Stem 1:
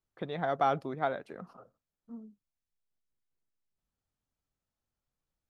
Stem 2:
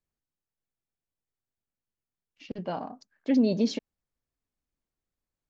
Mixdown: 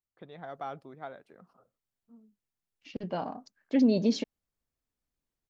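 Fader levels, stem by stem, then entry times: -11.0, -0.5 dB; 0.00, 0.45 s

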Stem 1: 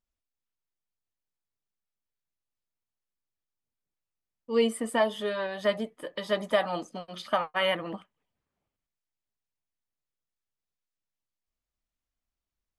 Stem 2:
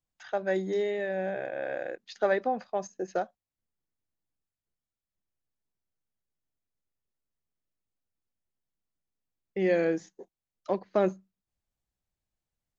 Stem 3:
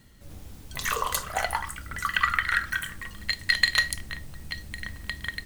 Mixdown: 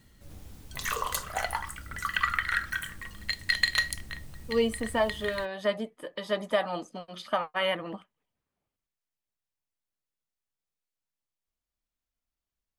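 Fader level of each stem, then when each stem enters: -1.5 dB, off, -3.5 dB; 0.00 s, off, 0.00 s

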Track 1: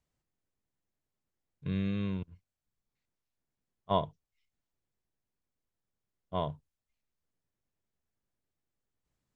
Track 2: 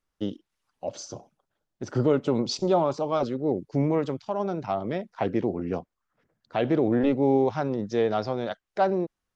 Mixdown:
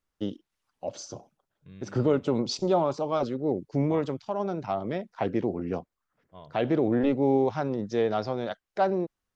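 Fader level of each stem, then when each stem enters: -15.0, -1.5 dB; 0.00, 0.00 s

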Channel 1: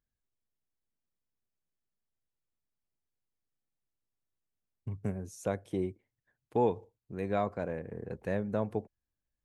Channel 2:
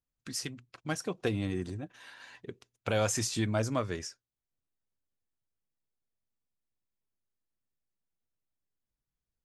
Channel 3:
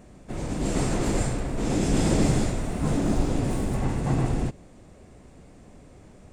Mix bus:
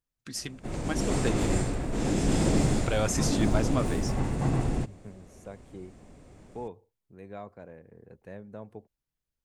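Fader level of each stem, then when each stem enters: -11.0, +0.5, -2.5 dB; 0.00, 0.00, 0.35 s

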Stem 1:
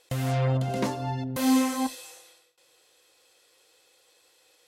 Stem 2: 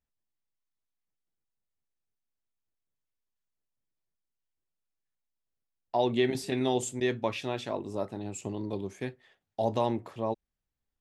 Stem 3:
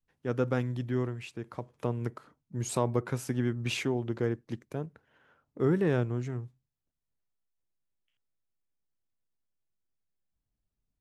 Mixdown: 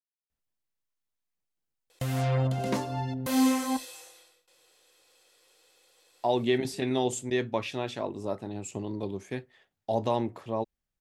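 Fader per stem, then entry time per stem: -1.5 dB, +0.5 dB, off; 1.90 s, 0.30 s, off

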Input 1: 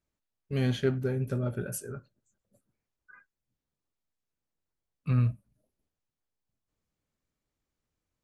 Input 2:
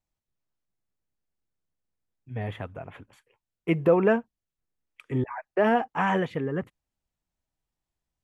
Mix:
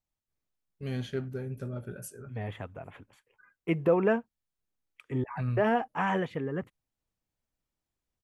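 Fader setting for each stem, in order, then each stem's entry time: -6.5, -4.0 dB; 0.30, 0.00 s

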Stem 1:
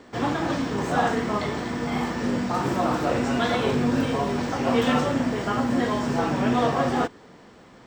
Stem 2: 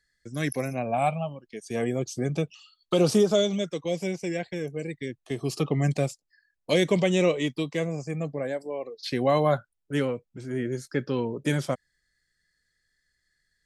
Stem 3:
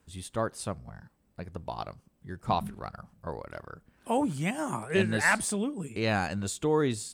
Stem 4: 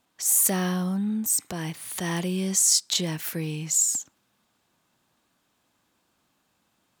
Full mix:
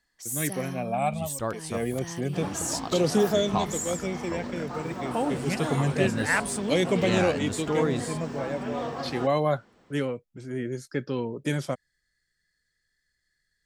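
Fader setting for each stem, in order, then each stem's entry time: -11.0, -2.0, -0.5, -11.5 dB; 2.20, 0.00, 1.05, 0.00 s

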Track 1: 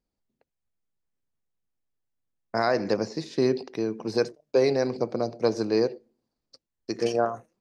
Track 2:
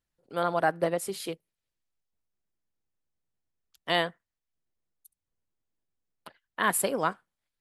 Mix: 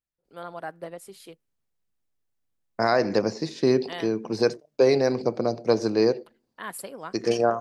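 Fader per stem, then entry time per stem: +2.5, -10.5 dB; 0.25, 0.00 s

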